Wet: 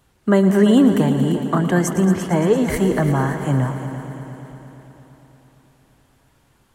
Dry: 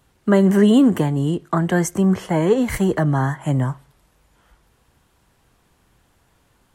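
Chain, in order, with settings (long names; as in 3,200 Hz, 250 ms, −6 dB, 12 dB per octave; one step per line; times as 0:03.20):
echo machine with several playback heads 114 ms, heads all three, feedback 65%, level −15 dB
feedback echo with a swinging delay time 173 ms, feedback 74%, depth 189 cents, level −20.5 dB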